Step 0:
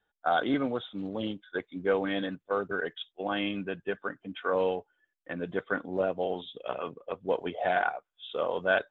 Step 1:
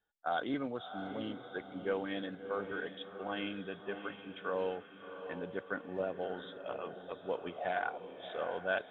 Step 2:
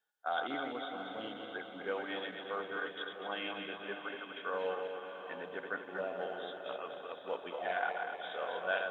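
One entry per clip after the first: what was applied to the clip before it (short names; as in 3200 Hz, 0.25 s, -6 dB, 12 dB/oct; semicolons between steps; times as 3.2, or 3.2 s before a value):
diffused feedback echo 0.679 s, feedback 44%, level -9 dB; gain -8 dB
regenerating reverse delay 0.122 s, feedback 70%, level -5 dB; HPF 710 Hz 6 dB/oct; gain +1.5 dB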